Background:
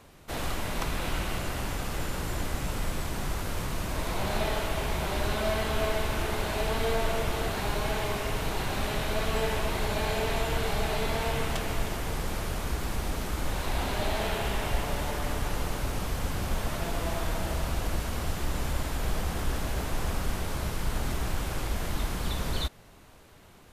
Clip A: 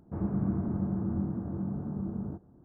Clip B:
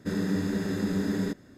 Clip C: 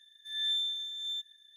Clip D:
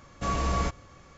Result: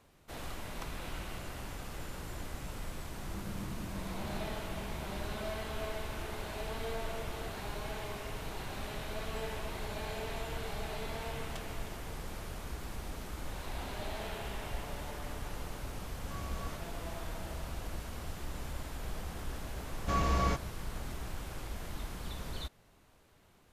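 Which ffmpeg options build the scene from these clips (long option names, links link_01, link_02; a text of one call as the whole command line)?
ffmpeg -i bed.wav -i cue0.wav -i cue1.wav -i cue2.wav -i cue3.wav -filter_complex "[4:a]asplit=2[link_01][link_02];[0:a]volume=-10.5dB[link_03];[link_02]lowpass=6300[link_04];[1:a]atrim=end=2.64,asetpts=PTS-STARTPTS,volume=-13.5dB,afade=type=in:duration=0.004:curve=hsin,afade=type=out:start_time=2.636:duration=0.004:curve=hsin,adelay=138033S[link_05];[link_01]atrim=end=1.17,asetpts=PTS-STARTPTS,volume=-17.5dB,afade=type=in:duration=0.004:curve=hsin,afade=type=out:start_time=1.166:duration=0.004:curve=hsin,adelay=16060[link_06];[link_04]atrim=end=1.17,asetpts=PTS-STARTPTS,volume=-2.5dB,afade=type=in:duration=0.004:curve=hsin,afade=type=out:start_time=1.166:duration=0.004:curve=hsin,adelay=19860[link_07];[link_03][link_05][link_06][link_07]amix=inputs=4:normalize=0" out.wav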